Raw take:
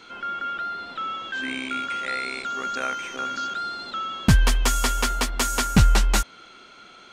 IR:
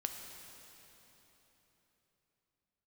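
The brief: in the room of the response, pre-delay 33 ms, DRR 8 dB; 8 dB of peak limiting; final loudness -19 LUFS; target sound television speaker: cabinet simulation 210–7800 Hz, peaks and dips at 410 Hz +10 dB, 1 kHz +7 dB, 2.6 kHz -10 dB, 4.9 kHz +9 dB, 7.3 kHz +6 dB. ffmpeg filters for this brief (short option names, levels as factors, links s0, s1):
-filter_complex "[0:a]alimiter=limit=0.168:level=0:latency=1,asplit=2[s0][s1];[1:a]atrim=start_sample=2205,adelay=33[s2];[s1][s2]afir=irnorm=-1:irlink=0,volume=0.376[s3];[s0][s3]amix=inputs=2:normalize=0,highpass=f=210:w=0.5412,highpass=f=210:w=1.3066,equalizer=f=410:t=q:w=4:g=10,equalizer=f=1000:t=q:w=4:g=7,equalizer=f=2600:t=q:w=4:g=-10,equalizer=f=4900:t=q:w=4:g=9,equalizer=f=7300:t=q:w=4:g=6,lowpass=f=7800:w=0.5412,lowpass=f=7800:w=1.3066,volume=2.37"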